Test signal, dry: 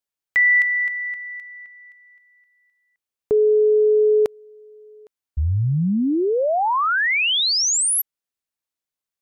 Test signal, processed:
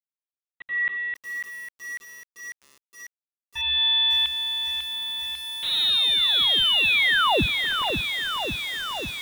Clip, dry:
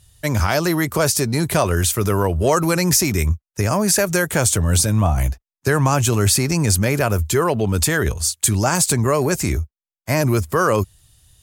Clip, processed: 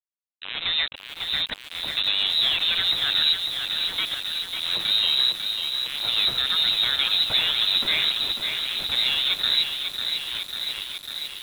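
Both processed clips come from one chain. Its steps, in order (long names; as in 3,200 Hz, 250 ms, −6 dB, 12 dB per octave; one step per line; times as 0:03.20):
downward compressor 16 to 1, threshold −20 dBFS
volume swells 542 ms
centre clipping without the shift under −25.5 dBFS
voice inversion scrambler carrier 3,900 Hz
feedback echo at a low word length 547 ms, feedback 80%, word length 7 bits, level −6 dB
level +1.5 dB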